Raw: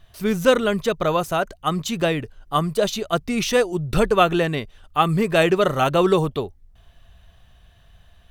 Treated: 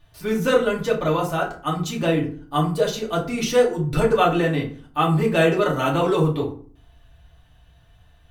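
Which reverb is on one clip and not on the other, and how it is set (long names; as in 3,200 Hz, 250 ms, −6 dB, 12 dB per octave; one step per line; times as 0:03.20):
feedback delay network reverb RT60 0.45 s, low-frequency decay 1.35×, high-frequency decay 0.6×, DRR −3.5 dB
level −6.5 dB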